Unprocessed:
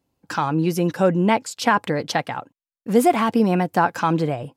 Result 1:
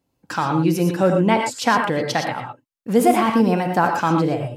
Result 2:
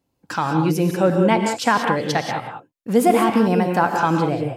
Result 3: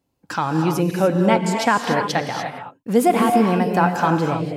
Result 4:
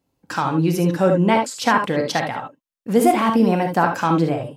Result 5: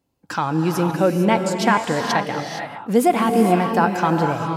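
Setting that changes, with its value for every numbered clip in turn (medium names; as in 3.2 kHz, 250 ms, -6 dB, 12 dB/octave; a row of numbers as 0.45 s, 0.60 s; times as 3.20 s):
gated-style reverb, gate: 140 ms, 210 ms, 320 ms, 90 ms, 490 ms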